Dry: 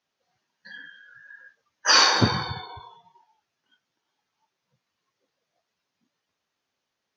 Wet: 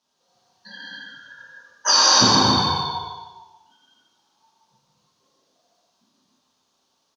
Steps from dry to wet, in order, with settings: rattling part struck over -26 dBFS, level -28 dBFS; graphic EQ 250/1000/2000/4000/8000 Hz +5/+8/-10/+7/+8 dB; compressor 6:1, threshold -18 dBFS, peak gain reduction 10.5 dB; on a send: feedback echo 0.145 s, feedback 37%, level -10 dB; on the sum: non-linear reverb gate 0.34 s flat, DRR -6.5 dB

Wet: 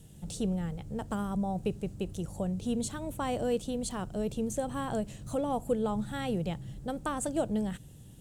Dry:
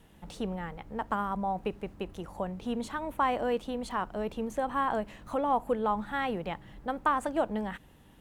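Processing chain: ten-band EQ 125 Hz +12 dB, 250 Hz -3 dB, 1000 Hz -12 dB, 2000 Hz -9 dB, 8000 Hz +11 dB; gain +2.5 dB

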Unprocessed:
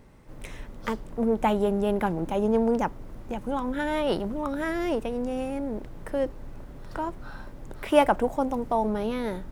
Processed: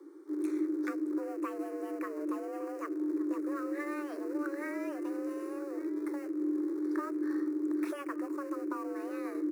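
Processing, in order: compressor 3:1, threshold -30 dBFS, peak gain reduction 12.5 dB; 5.4–6.13 notch comb 330 Hz; echo 1.162 s -17 dB; in parallel at -10 dB: Schmitt trigger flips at -43 dBFS; on the sum: envelope phaser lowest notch 400 Hz, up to 1500 Hz, full sweep at -13.5 dBFS; resonant low shelf 130 Hz +9 dB, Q 1.5; frequency shift +280 Hz; gain -5.5 dB

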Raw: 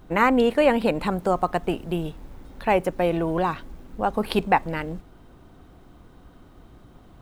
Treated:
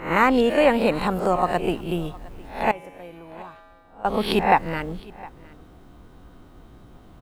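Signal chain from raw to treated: spectral swells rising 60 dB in 0.43 s; 2.71–4.05 resonator 92 Hz, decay 1.8 s, harmonics odd, mix 90%; echo 0.711 s -22.5 dB

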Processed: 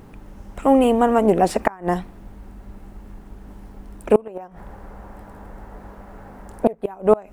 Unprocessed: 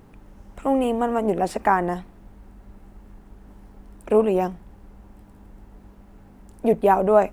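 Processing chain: 4.25–6.84 band shelf 940 Hz +8.5 dB 2.4 oct; flipped gate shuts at -8 dBFS, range -27 dB; gain +6 dB

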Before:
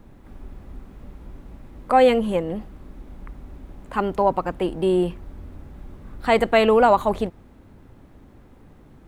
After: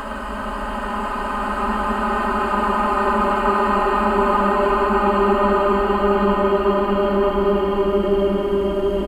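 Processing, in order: comb 3.2 ms, depth 67%; Paulstretch 46×, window 0.25 s, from 3.9; gain +4.5 dB

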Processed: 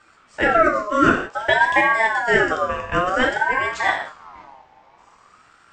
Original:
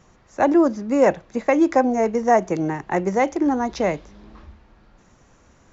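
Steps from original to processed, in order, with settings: non-linear reverb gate 0.21 s falling, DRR -1.5 dB; ring modulator with a swept carrier 1100 Hz, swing 25%, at 0.53 Hz

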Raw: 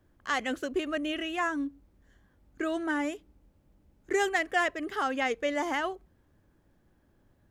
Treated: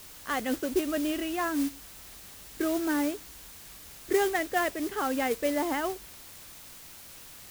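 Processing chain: tilt shelf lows +5 dB, about 800 Hz; modulation noise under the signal 14 dB; requantised 8-bit, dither triangular

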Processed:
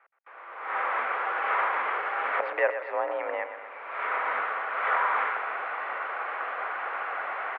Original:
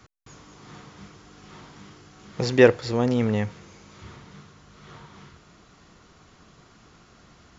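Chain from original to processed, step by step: recorder AGC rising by 32 dB/s; feedback echo 0.122 s, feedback 54%, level -10 dB; mistuned SSB +55 Hz 570–2200 Hz; gain -4 dB

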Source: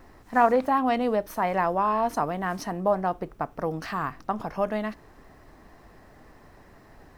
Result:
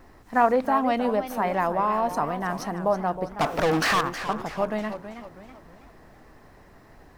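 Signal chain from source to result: 3.39–4.01 overdrive pedal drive 30 dB, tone 6800 Hz, clips at -15 dBFS; warbling echo 0.32 s, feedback 43%, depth 171 cents, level -11 dB

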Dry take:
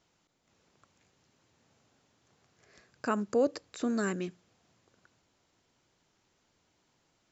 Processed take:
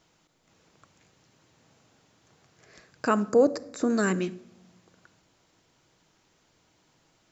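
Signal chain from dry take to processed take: 3.29–3.9 bell 3000 Hz -13 dB 0.8 oct; shoebox room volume 2400 m³, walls furnished, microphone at 0.59 m; gain +6.5 dB

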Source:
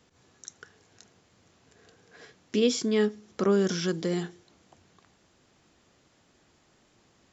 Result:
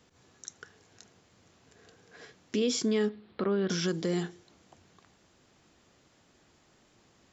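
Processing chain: limiter -20 dBFS, peak gain reduction 6.5 dB; 3.09–3.7 elliptic low-pass 4200 Hz, stop band 40 dB

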